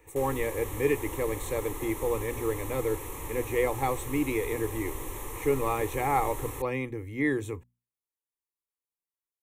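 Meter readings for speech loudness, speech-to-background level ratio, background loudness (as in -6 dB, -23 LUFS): -31.0 LUFS, 7.5 dB, -38.5 LUFS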